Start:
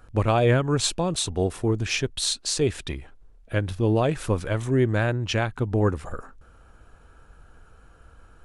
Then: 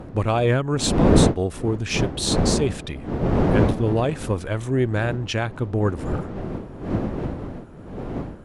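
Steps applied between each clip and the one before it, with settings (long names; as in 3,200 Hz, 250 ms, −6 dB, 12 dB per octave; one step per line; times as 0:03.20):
wind on the microphone 330 Hz −24 dBFS
harmonic generator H 8 −38 dB, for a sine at −2 dBFS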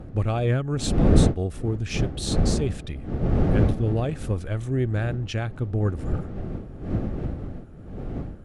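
low-shelf EQ 150 Hz +10.5 dB
notch filter 980 Hz, Q 6.2
level −7 dB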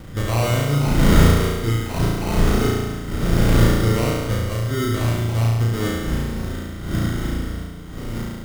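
decimation without filtering 26×
on a send: flutter between parallel walls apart 6 metres, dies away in 1.3 s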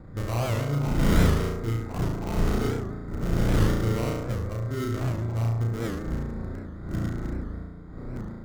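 adaptive Wiener filter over 15 samples
wow of a warped record 78 rpm, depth 160 cents
level −7 dB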